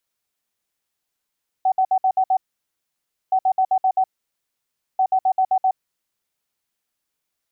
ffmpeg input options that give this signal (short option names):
-f lavfi -i "aevalsrc='0.2*sin(2*PI*756*t)*clip(min(mod(mod(t,1.67),0.13),0.07-mod(mod(t,1.67),0.13))/0.005,0,1)*lt(mod(t,1.67),0.78)':d=5.01:s=44100"